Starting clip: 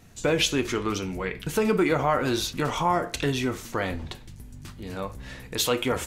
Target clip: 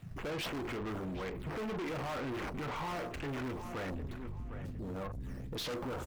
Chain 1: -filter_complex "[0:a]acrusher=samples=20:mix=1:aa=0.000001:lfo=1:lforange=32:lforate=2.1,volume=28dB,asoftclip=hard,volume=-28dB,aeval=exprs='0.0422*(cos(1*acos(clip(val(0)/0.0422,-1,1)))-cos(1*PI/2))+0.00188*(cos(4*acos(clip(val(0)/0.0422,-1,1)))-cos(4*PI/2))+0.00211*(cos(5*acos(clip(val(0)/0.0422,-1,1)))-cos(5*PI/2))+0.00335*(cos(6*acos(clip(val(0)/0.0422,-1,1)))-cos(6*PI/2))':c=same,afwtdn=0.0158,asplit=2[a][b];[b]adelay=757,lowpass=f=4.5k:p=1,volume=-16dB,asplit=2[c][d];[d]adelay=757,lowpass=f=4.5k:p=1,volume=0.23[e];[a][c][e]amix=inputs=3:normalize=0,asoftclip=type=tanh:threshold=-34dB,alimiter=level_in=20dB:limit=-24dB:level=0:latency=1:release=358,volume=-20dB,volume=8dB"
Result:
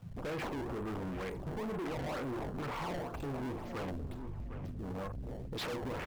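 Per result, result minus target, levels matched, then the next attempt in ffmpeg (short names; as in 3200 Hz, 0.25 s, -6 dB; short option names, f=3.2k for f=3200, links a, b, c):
overloaded stage: distortion +14 dB; decimation with a swept rate: distortion +7 dB
-filter_complex "[0:a]acrusher=samples=20:mix=1:aa=0.000001:lfo=1:lforange=32:lforate=2.1,volume=17dB,asoftclip=hard,volume=-17dB,aeval=exprs='0.0422*(cos(1*acos(clip(val(0)/0.0422,-1,1)))-cos(1*PI/2))+0.00188*(cos(4*acos(clip(val(0)/0.0422,-1,1)))-cos(4*PI/2))+0.00211*(cos(5*acos(clip(val(0)/0.0422,-1,1)))-cos(5*PI/2))+0.00335*(cos(6*acos(clip(val(0)/0.0422,-1,1)))-cos(6*PI/2))':c=same,afwtdn=0.0158,asplit=2[a][b];[b]adelay=757,lowpass=f=4.5k:p=1,volume=-16dB,asplit=2[c][d];[d]adelay=757,lowpass=f=4.5k:p=1,volume=0.23[e];[a][c][e]amix=inputs=3:normalize=0,asoftclip=type=tanh:threshold=-34dB,alimiter=level_in=20dB:limit=-24dB:level=0:latency=1:release=358,volume=-20dB,volume=8dB"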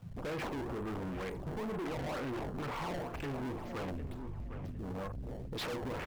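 decimation with a swept rate: distortion +7 dB
-filter_complex "[0:a]acrusher=samples=7:mix=1:aa=0.000001:lfo=1:lforange=11.2:lforate=2.1,volume=17dB,asoftclip=hard,volume=-17dB,aeval=exprs='0.0422*(cos(1*acos(clip(val(0)/0.0422,-1,1)))-cos(1*PI/2))+0.00188*(cos(4*acos(clip(val(0)/0.0422,-1,1)))-cos(4*PI/2))+0.00211*(cos(5*acos(clip(val(0)/0.0422,-1,1)))-cos(5*PI/2))+0.00335*(cos(6*acos(clip(val(0)/0.0422,-1,1)))-cos(6*PI/2))':c=same,afwtdn=0.0158,asplit=2[a][b];[b]adelay=757,lowpass=f=4.5k:p=1,volume=-16dB,asplit=2[c][d];[d]adelay=757,lowpass=f=4.5k:p=1,volume=0.23[e];[a][c][e]amix=inputs=3:normalize=0,asoftclip=type=tanh:threshold=-34dB,alimiter=level_in=20dB:limit=-24dB:level=0:latency=1:release=358,volume=-20dB,volume=8dB"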